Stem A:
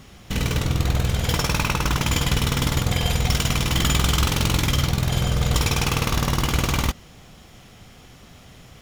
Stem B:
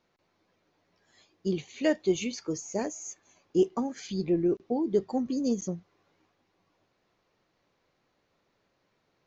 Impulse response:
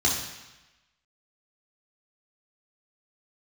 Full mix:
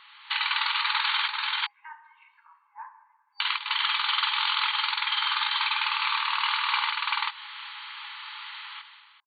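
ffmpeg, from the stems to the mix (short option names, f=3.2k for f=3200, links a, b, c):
-filter_complex "[0:a]volume=1dB,asplit=3[a][b][c];[a]atrim=end=1.28,asetpts=PTS-STARTPTS,afade=t=out:st=1.276:d=0.004:c=hsin[d];[b]atrim=start=1.28:end=3.4,asetpts=PTS-STARTPTS,volume=0[e];[c]atrim=start=3.4,asetpts=PTS-STARTPTS,afade=t=in:d=0.004:c=hsin[f];[d][e][f]concat=n=3:v=0:a=1,asplit=2[g][h];[h]volume=-6.5dB[i];[1:a]lowpass=f=1.3k:w=0.5412,lowpass=f=1.3k:w=1.3066,equalizer=f=430:w=2.4:g=13,aecho=1:1:1.9:0.54,volume=-9.5dB,asplit=3[j][k][l];[k]volume=-16dB[m];[l]apad=whole_len=388673[n];[g][n]sidechaincompress=threshold=-33dB:ratio=5:attack=9.6:release=192[o];[2:a]atrim=start_sample=2205[p];[m][p]afir=irnorm=-1:irlink=0[q];[i]aecho=0:1:387:1[r];[o][j][q][r]amix=inputs=4:normalize=0,afftfilt=real='re*between(b*sr/4096,820,4600)':imag='im*between(b*sr/4096,820,4600)':win_size=4096:overlap=0.75,dynaudnorm=f=130:g=7:m=11.5dB,alimiter=limit=-14.5dB:level=0:latency=1:release=175"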